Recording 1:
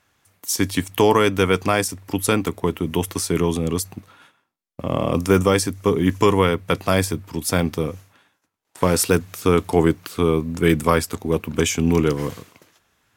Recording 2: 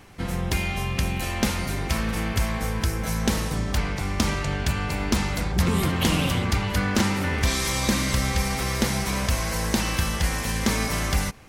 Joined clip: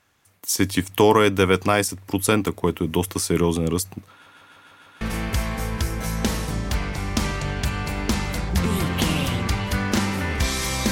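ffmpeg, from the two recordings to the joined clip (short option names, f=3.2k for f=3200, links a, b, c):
-filter_complex "[0:a]apad=whole_dur=10.91,atrim=end=10.91,asplit=6[a][b][c][d][e][f];[a]atrim=end=4.262[g];[b]atrim=start=4.108:end=4.262[h];[c]atrim=start=4.108:end=4.262[i];[d]atrim=start=4.108:end=4.262[j];[e]atrim=start=4.108:end=4.262[k];[f]atrim=start=4.108:end=4.262[l];[1:a]atrim=start=2.038:end=7.94[m];[g][h]acrossfade=d=0.004:c1=hsin:c2=hsin[n];[n][i]acrossfade=d=0.004:c1=hsin:c2=hsin[o];[o][j]acrossfade=d=0.004:c1=hsin:c2=hsin[p];[p][k]acrossfade=d=0.004:c1=hsin:c2=hsin[q];[q][l]acrossfade=d=0.004:c1=hsin:c2=hsin[r];[r][m]acrossfade=d=0.004:c1=hsin:c2=hsin"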